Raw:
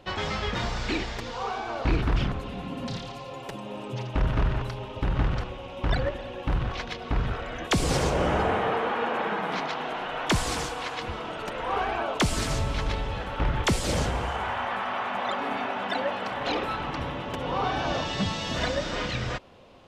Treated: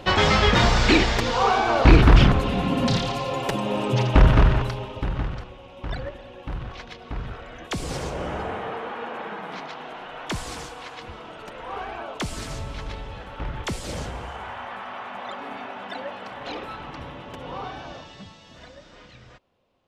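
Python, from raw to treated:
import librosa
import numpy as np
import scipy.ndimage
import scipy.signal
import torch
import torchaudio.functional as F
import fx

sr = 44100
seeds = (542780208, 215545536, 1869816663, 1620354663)

y = fx.gain(x, sr, db=fx.line((4.15, 11.5), (4.8, 4.0), (5.42, -5.5), (17.55, -5.5), (18.41, -18.0)))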